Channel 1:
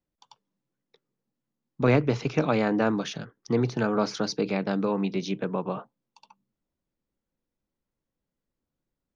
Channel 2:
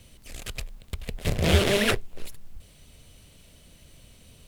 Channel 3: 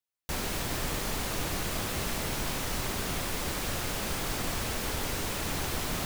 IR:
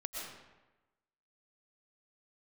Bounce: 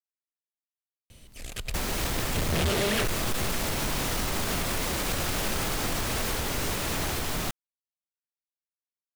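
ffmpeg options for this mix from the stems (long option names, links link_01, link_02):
-filter_complex "[1:a]adelay=1100,volume=-0.5dB,asplit=2[link_01][link_02];[link_02]volume=-17dB[link_03];[2:a]dynaudnorm=framelen=460:gausssize=9:maxgain=11.5dB,alimiter=limit=-22.5dB:level=0:latency=1:release=366,adelay=1450,volume=1dB,asplit=2[link_04][link_05];[link_05]volume=-4.5dB[link_06];[3:a]atrim=start_sample=2205[link_07];[link_03][link_06]amix=inputs=2:normalize=0[link_08];[link_08][link_07]afir=irnorm=-1:irlink=0[link_09];[link_01][link_04][link_09]amix=inputs=3:normalize=0,volume=23dB,asoftclip=hard,volume=-23dB"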